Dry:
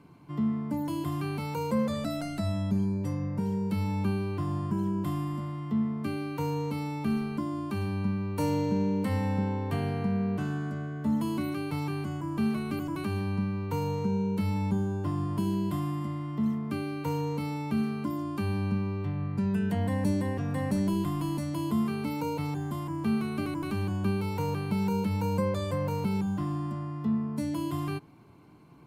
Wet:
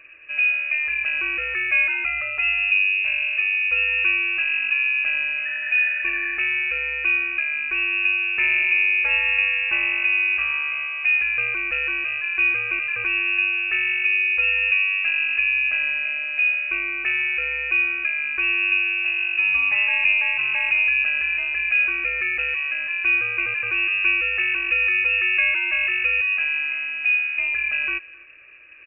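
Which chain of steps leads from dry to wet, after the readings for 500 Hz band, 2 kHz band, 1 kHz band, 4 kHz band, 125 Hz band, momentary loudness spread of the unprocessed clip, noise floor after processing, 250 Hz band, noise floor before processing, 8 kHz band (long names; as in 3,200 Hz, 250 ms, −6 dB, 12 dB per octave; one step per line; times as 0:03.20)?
−8.5 dB, +28.0 dB, −3.0 dB, +16.5 dB, below −20 dB, 4 LU, −29 dBFS, −19.5 dB, −36 dBFS, below −30 dB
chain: healed spectral selection 0:05.48–0:06.35, 580–1,300 Hz after
on a send: single-tap delay 262 ms −22.5 dB
on the sum: voice inversion scrambler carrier 2,700 Hz
level +7.5 dB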